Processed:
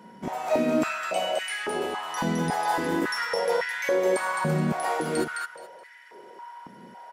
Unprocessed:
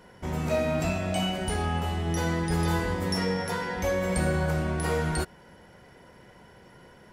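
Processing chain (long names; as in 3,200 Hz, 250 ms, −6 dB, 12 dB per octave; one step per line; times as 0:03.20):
repeating echo 212 ms, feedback 22%, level −4 dB
steady tone 950 Hz −49 dBFS
high-pass on a step sequencer 3.6 Hz 210–1,900 Hz
level −1.5 dB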